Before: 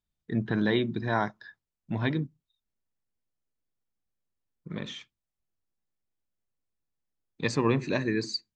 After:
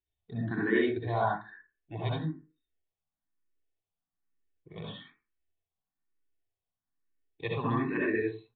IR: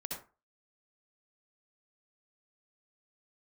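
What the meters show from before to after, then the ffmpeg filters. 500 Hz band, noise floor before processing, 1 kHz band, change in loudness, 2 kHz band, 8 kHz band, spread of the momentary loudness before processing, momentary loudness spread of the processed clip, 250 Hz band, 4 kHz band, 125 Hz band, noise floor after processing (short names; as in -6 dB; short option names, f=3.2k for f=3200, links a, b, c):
-1.0 dB, under -85 dBFS, +0.5 dB, -2.0 dB, -1.0 dB, under -30 dB, 13 LU, 17 LU, -3.5 dB, -9.5 dB, -3.0 dB, under -85 dBFS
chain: -filter_complex "[1:a]atrim=start_sample=2205[a];[0:a][a]afir=irnorm=-1:irlink=0,aresample=8000,aresample=44100,equalizer=f=1.8k:w=4.8:g=2.5,aecho=1:1:2.7:0.43,asplit=2[b][c];[c]afreqshift=1.1[d];[b][d]amix=inputs=2:normalize=1"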